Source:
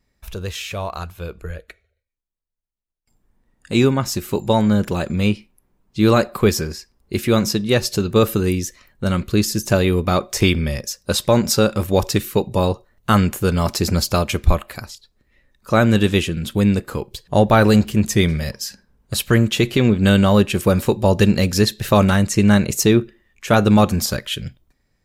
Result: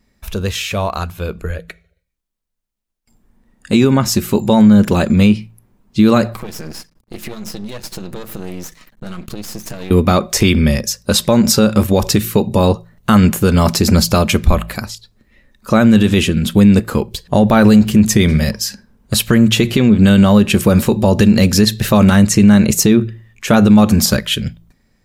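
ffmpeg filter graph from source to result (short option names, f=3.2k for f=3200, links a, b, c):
-filter_complex "[0:a]asettb=1/sr,asplit=3[a][b][c];[a]atrim=end=6.334[d];[b]atrim=start=6.33:end=9.91,asetpts=PTS-STARTPTS,afade=t=in:d=0.004:c=qsin,afade=t=out:st=3.576:d=0.004:c=qsin,acompressor=threshold=-30dB:ratio=8:attack=3.2:release=140:knee=1:detection=peak,aecho=1:1:6.3:0.49,atrim=end_sample=157878,aeval=exprs='max(val(0),0)':c=same[e];[c]atrim=start=9.906[f];[d][e]acrossfade=d=0.004:c1=hsin:c2=qsin[g];[g][f]acrossfade=d=0.004:c1=qsin:c2=hsin,equalizer=f=220:t=o:w=0.34:g=8,bandreject=f=56.05:t=h:w=4,bandreject=f=112.1:t=h:w=4,bandreject=f=168.15:t=h:w=4,alimiter=limit=-9.5dB:level=0:latency=1:release=65,volume=7.5dB"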